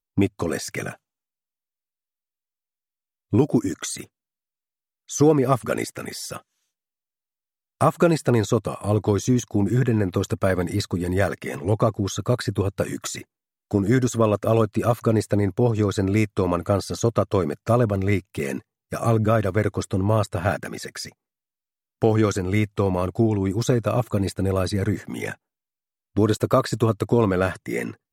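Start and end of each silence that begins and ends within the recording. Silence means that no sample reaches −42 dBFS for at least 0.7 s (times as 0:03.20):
0:00.95–0:03.32
0:04.05–0:05.09
0:06.40–0:07.81
0:21.12–0:22.02
0:25.35–0:26.16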